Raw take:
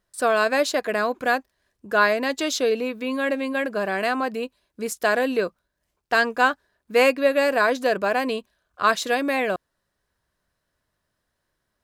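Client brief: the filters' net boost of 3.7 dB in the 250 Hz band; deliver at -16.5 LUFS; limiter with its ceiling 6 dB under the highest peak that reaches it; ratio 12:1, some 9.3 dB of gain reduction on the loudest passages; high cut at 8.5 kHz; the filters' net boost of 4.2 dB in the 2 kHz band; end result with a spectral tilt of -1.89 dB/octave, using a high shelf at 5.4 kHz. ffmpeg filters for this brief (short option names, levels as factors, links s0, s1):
-af "lowpass=8500,equalizer=f=250:t=o:g=4,equalizer=f=2000:t=o:g=6.5,highshelf=f=5400:g=-7,acompressor=threshold=0.1:ratio=12,volume=3.16,alimiter=limit=0.501:level=0:latency=1"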